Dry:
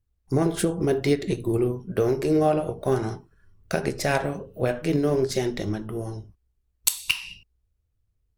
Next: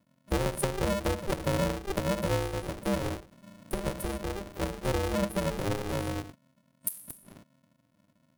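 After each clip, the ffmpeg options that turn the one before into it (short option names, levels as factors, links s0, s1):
-af "acompressor=threshold=0.0282:ratio=2.5,afftfilt=real='re*(1-between(b*sr/4096,430,8700))':imag='im*(1-between(b*sr/4096,430,8700))':win_size=4096:overlap=0.75,aeval=exprs='val(0)*sgn(sin(2*PI*200*n/s))':c=same,volume=1.41"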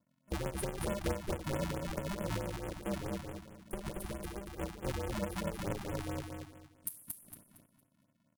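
-filter_complex "[0:a]asplit=2[s0][s1];[s1]aecho=0:1:230|460|690|920:0.631|0.183|0.0531|0.0154[s2];[s0][s2]amix=inputs=2:normalize=0,afftfilt=real='re*(1-between(b*sr/1024,420*pow(5000/420,0.5+0.5*sin(2*PI*4.6*pts/sr))/1.41,420*pow(5000/420,0.5+0.5*sin(2*PI*4.6*pts/sr))*1.41))':imag='im*(1-between(b*sr/1024,420*pow(5000/420,0.5+0.5*sin(2*PI*4.6*pts/sr))/1.41,420*pow(5000/420,0.5+0.5*sin(2*PI*4.6*pts/sr))*1.41))':win_size=1024:overlap=0.75,volume=0.398"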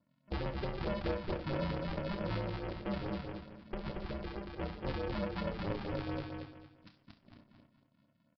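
-af "asoftclip=type=tanh:threshold=0.0376,aecho=1:1:29|66:0.355|0.178,aresample=11025,aresample=44100,volume=1.12"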